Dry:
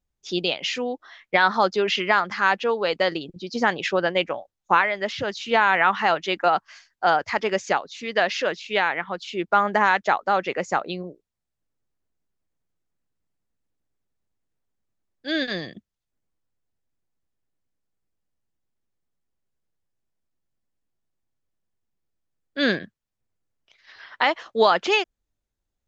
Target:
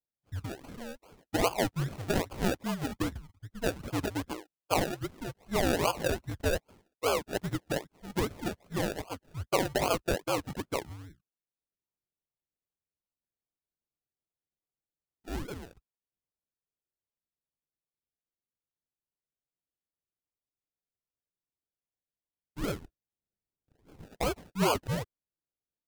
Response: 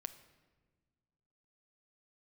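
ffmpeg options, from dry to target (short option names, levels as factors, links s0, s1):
-filter_complex "[0:a]highpass=f=310:t=q:w=0.5412,highpass=f=310:t=q:w=1.307,lowpass=f=2100:t=q:w=0.5176,lowpass=f=2100:t=q:w=0.7071,lowpass=f=2100:t=q:w=1.932,afreqshift=-260,equalizer=f=240:t=o:w=0.21:g=-10,acrusher=samples=33:mix=1:aa=0.000001:lfo=1:lforange=19.8:lforate=2.5,asettb=1/sr,asplit=3[s0][s1][s2];[s0]atrim=end=22.814[s3];[s1]atrim=start=22.81:end=24.06,asetpts=PTS-STARTPTS,afade=t=in:d=0.004:c=qsin,afade=t=out:st=1.246:d=0.004:c=qsin,lowshelf=f=370:g=7.5[s4];[s2]atrim=start=24.056[s5];[s3][s4]acrossfade=d=0.004:c1=hsin:c2=qsin[s6];[s6][s5]acrossfade=d=0.004:c1=qsin:c2=hsin,volume=0.376"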